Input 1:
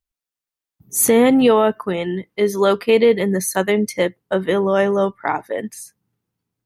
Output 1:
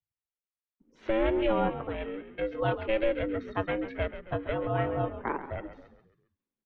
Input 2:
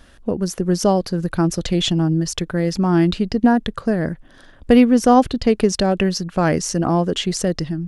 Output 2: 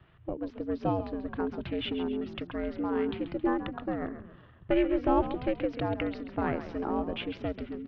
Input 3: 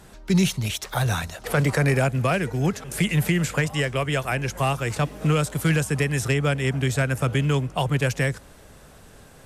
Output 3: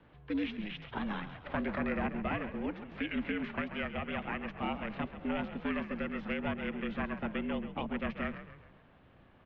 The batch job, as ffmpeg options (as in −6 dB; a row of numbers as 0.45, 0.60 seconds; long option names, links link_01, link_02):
-filter_complex "[0:a]aeval=exprs='val(0)*sin(2*PI*280*n/s)':channel_layout=same,highpass=frequency=210:width_type=q:width=0.5412,highpass=frequency=210:width_type=q:width=1.307,lowpass=frequency=3400:width_type=q:width=0.5176,lowpass=frequency=3400:width_type=q:width=0.7071,lowpass=frequency=3400:width_type=q:width=1.932,afreqshift=-180,asplit=6[link_01][link_02][link_03][link_04][link_05][link_06];[link_02]adelay=135,afreqshift=-45,volume=-11.5dB[link_07];[link_03]adelay=270,afreqshift=-90,volume=-18.2dB[link_08];[link_04]adelay=405,afreqshift=-135,volume=-25dB[link_09];[link_05]adelay=540,afreqshift=-180,volume=-31.7dB[link_10];[link_06]adelay=675,afreqshift=-225,volume=-38.5dB[link_11];[link_01][link_07][link_08][link_09][link_10][link_11]amix=inputs=6:normalize=0,volume=-8.5dB"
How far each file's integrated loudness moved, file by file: −13.5, −13.5, −13.0 LU